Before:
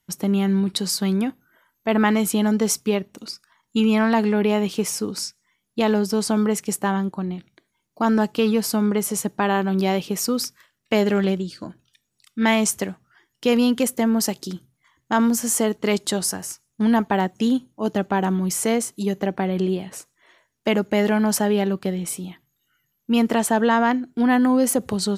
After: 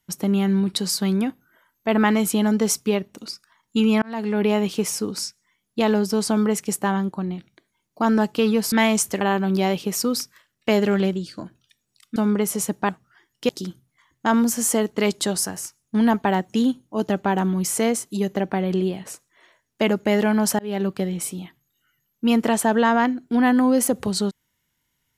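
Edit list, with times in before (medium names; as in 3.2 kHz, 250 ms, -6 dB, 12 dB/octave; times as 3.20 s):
4.02–4.45 s: fade in
8.72–9.45 s: swap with 12.40–12.89 s
13.49–14.35 s: delete
21.45–21.71 s: fade in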